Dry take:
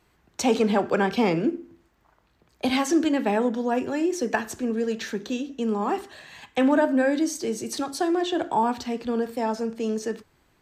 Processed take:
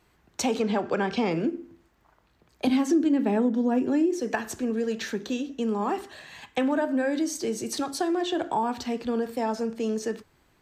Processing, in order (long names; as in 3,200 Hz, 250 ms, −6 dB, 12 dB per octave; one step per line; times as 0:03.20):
0:00.60–0:01.31: low-pass filter 7,600 Hz 24 dB per octave
0:02.67–0:04.20: parametric band 270 Hz +12 dB 1.4 octaves
downward compressor 3 to 1, threshold −23 dBFS, peak gain reduction 13 dB